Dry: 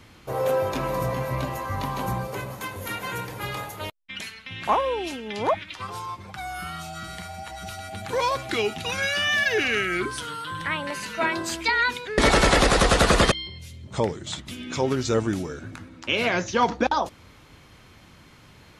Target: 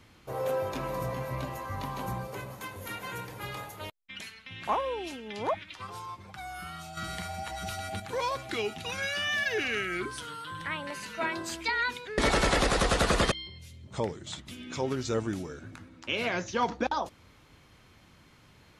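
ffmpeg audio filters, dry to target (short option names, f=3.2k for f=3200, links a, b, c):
-filter_complex "[0:a]asettb=1/sr,asplit=3[a][b][c];[a]atrim=end=6.974[d];[b]atrim=start=6.97:end=8,asetpts=PTS-STARTPTS,afade=t=in:d=0.004:c=qsin,afade=t=out:st=1.026:d=0.004:c=qsin,acontrast=74[e];[c]atrim=start=7.996[f];[d][e]acrossfade=d=0.004:c1=hsin:c2=qsin[g];[g][f]acrossfade=d=0.004:c1=qsin:c2=hsin,volume=-7dB"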